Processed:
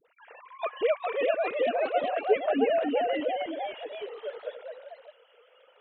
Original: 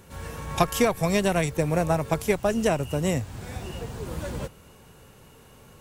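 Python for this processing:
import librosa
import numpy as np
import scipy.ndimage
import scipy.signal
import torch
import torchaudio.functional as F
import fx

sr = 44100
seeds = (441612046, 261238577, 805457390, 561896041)

y = fx.sine_speech(x, sr)
y = fx.notch(y, sr, hz=1100.0, q=18.0)
y = fx.dispersion(y, sr, late='highs', ms=50.0, hz=590.0)
y = fx.hpss(y, sr, part='harmonic', gain_db=6)
y = fx.echo_pitch(y, sr, ms=442, semitones=1, count=3, db_per_echo=-3.0)
y = y * librosa.db_to_amplitude(-8.5)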